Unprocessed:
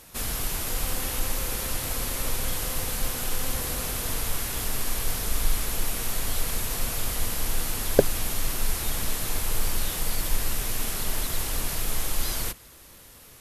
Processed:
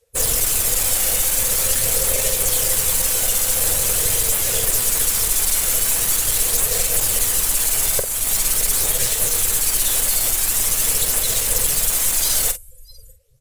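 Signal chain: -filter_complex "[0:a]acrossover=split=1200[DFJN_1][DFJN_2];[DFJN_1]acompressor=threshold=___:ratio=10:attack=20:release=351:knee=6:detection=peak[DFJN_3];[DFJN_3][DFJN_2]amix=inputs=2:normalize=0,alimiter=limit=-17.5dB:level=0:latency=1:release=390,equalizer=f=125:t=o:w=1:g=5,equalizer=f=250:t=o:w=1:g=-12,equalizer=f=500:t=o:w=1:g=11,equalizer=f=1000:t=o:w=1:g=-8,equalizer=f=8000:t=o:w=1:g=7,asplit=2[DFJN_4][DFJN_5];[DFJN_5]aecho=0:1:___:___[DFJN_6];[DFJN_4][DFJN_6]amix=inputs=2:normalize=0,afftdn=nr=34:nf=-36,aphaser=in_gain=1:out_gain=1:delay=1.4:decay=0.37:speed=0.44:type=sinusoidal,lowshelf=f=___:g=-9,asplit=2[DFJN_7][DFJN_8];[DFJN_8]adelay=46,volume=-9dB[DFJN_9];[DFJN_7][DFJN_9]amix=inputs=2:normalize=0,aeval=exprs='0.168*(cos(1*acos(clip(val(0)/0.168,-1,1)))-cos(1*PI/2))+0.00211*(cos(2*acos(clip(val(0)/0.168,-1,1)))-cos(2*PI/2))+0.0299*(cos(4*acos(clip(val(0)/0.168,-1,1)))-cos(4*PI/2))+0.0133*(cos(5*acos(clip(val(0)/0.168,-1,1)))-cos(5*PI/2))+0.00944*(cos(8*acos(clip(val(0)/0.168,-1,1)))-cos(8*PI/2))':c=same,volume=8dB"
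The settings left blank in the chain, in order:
-30dB, 621, 0.211, 320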